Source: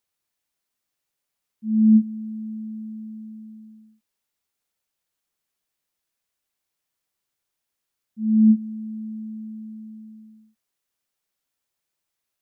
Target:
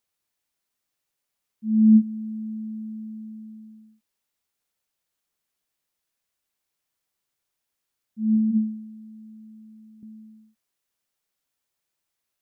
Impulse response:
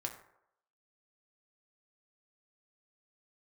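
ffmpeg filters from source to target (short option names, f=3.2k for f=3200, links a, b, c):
-filter_complex "[0:a]asettb=1/sr,asplit=3[a][b][c];[a]atrim=end=8.344[d];[b]atrim=start=8.34:end=10.03,asetpts=PTS-STARTPTS,afade=t=in:d=0.004:c=qsin,afade=t=out:st=1.686:d=0.004:c=qsin,bandreject=f=72.47:t=h:w=4,bandreject=f=144.94:t=h:w=4,bandreject=f=217.41:t=h:w=4,bandreject=f=289.88:t=h:w=4,bandreject=f=362.35:t=h:w=4,bandreject=f=434.82:t=h:w=4,bandreject=f=507.29:t=h:w=4,bandreject=f=579.76:t=h:w=4,bandreject=f=652.23:t=h:w=4,bandreject=f=724.7:t=h:w=4[e];[c]atrim=start=10.026[f];[d][e]acrossfade=d=0.004:c1=hsin:c2=qsin[g];[g][f]acrossfade=d=0.004:c1=qsin:c2=hsin"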